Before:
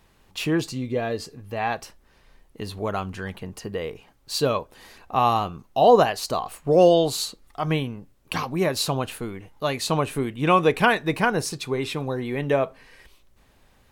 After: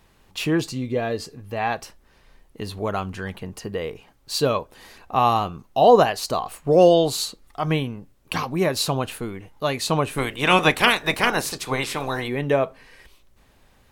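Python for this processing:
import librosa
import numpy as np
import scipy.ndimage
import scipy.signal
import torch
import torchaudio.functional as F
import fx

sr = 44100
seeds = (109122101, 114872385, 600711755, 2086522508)

y = fx.spec_clip(x, sr, under_db=19, at=(10.17, 12.27), fade=0.02)
y = y * librosa.db_to_amplitude(1.5)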